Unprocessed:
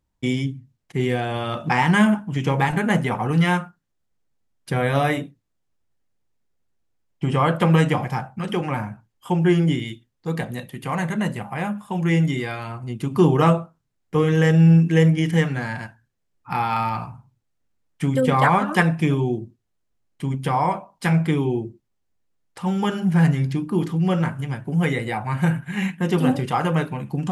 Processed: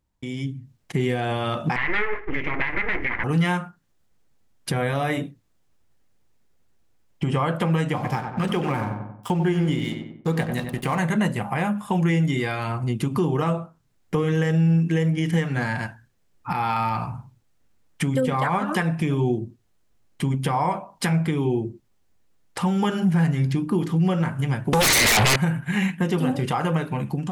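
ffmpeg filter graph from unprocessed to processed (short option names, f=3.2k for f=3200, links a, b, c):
-filter_complex "[0:a]asettb=1/sr,asplit=3[a][b][c];[a]atrim=end=1.764[d];[b]atrim=start=1.76:end=3.24,asetpts=PTS-STARTPTS,afade=t=in:d=0.004:c=qsin,afade=t=out:st=1.476:d=0.004:c=qsin,aeval=exprs='abs(val(0))':c=same,lowpass=f=2.1k:t=q:w=7,equalizer=f=660:t=o:w=0.38:g=-5[e];[c]atrim=start=3.236[f];[d][e]acrossfade=d=0.004:c1=hsin:c2=qsin[g];[g][f]acrossfade=d=0.004:c1=qsin:c2=hsin,asettb=1/sr,asplit=3[h][i][j];[h]atrim=end=7.954[k];[i]atrim=start=7.95:end=10.99,asetpts=PTS-STARTPTS,afade=t=in:d=0.004:c=qsin,afade=t=out:st=3.036:d=0.004:c=qsin,aeval=exprs='sgn(val(0))*max(abs(val(0))-0.00668,0)':c=same,asplit=2[l][m];[m]adelay=93,lowpass=f=1.7k:p=1,volume=-7dB,asplit=2[n][o];[o]adelay=93,lowpass=f=1.7k:p=1,volume=0.41,asplit=2[p][q];[q]adelay=93,lowpass=f=1.7k:p=1,volume=0.41,asplit=2[r][s];[s]adelay=93,lowpass=f=1.7k:p=1,volume=0.41,asplit=2[t][u];[u]adelay=93,lowpass=f=1.7k:p=1,volume=0.41[v];[l][n][p][r][t][v]amix=inputs=6:normalize=0,atrim=end_sample=134064[w];[j]atrim=start=10.986[x];[k][w]acrossfade=d=0.004:c1=hsin:c2=qsin[y];[y][x]acrossfade=d=0.004:c1=qsin:c2=hsin,asettb=1/sr,asplit=3[z][aa][ab];[z]atrim=end=24.734[ac];[aa]atrim=start=24.73:end=25.36,asetpts=PTS-STARTPTS,afade=t=in:d=0.004:c=qsin,afade=t=out:st=0.626:d=0.004:c=qsin,highshelf=f=1.6k:t=q:w=3:g=9,acompressor=threshold=-25dB:ratio=4:attack=3.2:release=140:knee=1:detection=peak,aeval=exprs='0.188*sin(PI/2*7.94*val(0)/0.188)':c=same[ad];[ab]atrim=start=25.356[ae];[ac][ad]acrossfade=d=0.004:c1=hsin:c2=qsin[af];[af][ae]acrossfade=d=0.004:c1=qsin:c2=hsin,acompressor=threshold=-34dB:ratio=2,alimiter=limit=-22.5dB:level=0:latency=1:release=216,dynaudnorm=f=210:g=5:m=9.5dB"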